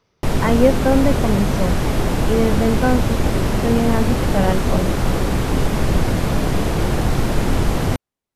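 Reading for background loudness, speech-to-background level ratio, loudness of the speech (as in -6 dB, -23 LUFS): -20.5 LUFS, 0.0 dB, -20.5 LUFS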